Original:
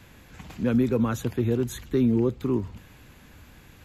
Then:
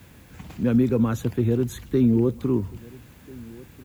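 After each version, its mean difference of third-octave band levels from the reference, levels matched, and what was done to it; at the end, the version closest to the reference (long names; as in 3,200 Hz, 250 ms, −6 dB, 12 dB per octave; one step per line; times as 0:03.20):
3.0 dB: high-pass filter 52 Hz
low-shelf EQ 470 Hz +5.5 dB
background noise blue −59 dBFS
slap from a distant wall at 230 metres, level −22 dB
level −1.5 dB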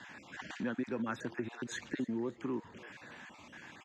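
8.5 dB: time-frequency cells dropped at random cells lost 28%
downward compressor 2.5 to 1, threshold −36 dBFS, peak gain reduction 12 dB
loudspeaker in its box 250–6,800 Hz, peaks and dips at 450 Hz −8 dB, 890 Hz +4 dB, 1,700 Hz +8 dB, 4,400 Hz −3 dB
echo with shifted repeats 293 ms, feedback 43%, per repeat +110 Hz, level −21 dB
level +2 dB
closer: first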